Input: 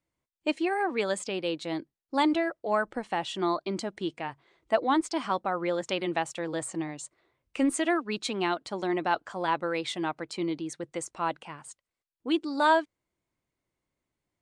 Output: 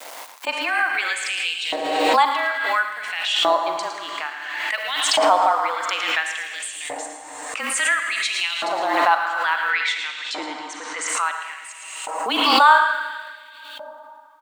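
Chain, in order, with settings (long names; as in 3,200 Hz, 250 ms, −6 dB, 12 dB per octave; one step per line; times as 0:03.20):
on a send at −4 dB: convolution reverb RT60 2.8 s, pre-delay 34 ms
on the sum: frequency shifter −28 Hz
log-companded quantiser 8 bits
0:09.70–0:11.08: loudspeaker in its box 130–7,700 Hz, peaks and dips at 130 Hz −5 dB, 240 Hz +7 dB, 740 Hz −4 dB, 1,900 Hz +5 dB
slap from a distant wall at 19 metres, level −8 dB
auto-filter high-pass saw up 0.58 Hz 630–3,000 Hz
background raised ahead of every attack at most 33 dB per second
level +5.5 dB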